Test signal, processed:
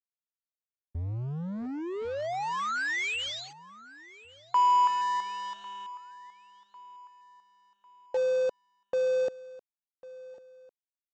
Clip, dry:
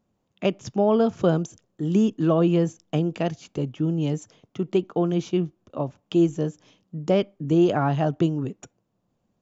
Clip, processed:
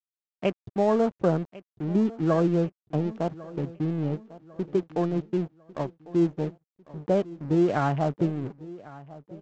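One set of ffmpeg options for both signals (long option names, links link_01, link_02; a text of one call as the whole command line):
ffmpeg -i in.wav -af "agate=range=-33dB:threshold=-48dB:ratio=3:detection=peak,lowpass=2900,afwtdn=0.0178,equalizer=frequency=260:width=0.56:gain=-3,aresample=16000,aeval=exprs='sgn(val(0))*max(abs(val(0))-0.00891,0)':channel_layout=same,aresample=44100,aecho=1:1:1099|2198|3297:0.112|0.0449|0.018,adynamicequalizer=threshold=0.01:dfrequency=1600:dqfactor=0.7:tfrequency=1600:tqfactor=0.7:attack=5:release=100:ratio=0.375:range=1.5:mode=boostabove:tftype=highshelf" out.wav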